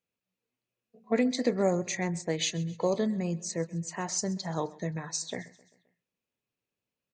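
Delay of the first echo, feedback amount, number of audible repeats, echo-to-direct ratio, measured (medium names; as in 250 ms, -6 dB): 131 ms, 55%, 3, -20.0 dB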